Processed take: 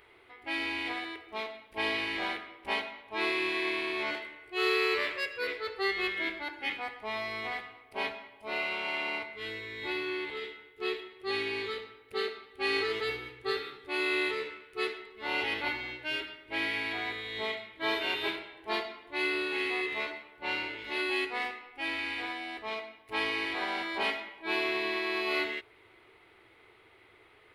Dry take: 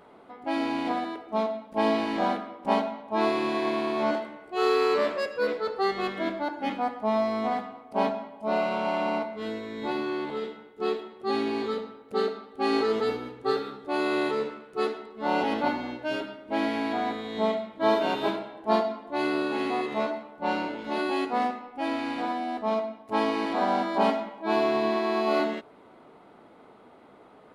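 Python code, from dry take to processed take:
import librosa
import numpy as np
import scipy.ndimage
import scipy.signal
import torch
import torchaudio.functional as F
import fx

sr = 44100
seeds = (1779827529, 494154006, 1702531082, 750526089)

y = fx.curve_eq(x, sr, hz=(110.0, 160.0, 250.0, 360.0, 600.0, 1400.0, 2100.0, 4300.0, 6700.0, 11000.0), db=(0, -19, -22, -5, -16, -6, 7, 0, -6, 2))
y = y * 10.0 ** (1.0 / 20.0)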